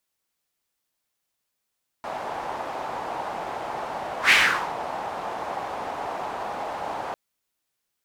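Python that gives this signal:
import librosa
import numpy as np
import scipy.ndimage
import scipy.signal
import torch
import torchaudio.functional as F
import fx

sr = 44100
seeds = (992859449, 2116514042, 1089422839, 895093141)

y = fx.whoosh(sr, seeds[0], length_s=5.1, peak_s=2.27, rise_s=0.11, fall_s=0.44, ends_hz=800.0, peak_hz=2300.0, q=2.7, swell_db=15.5)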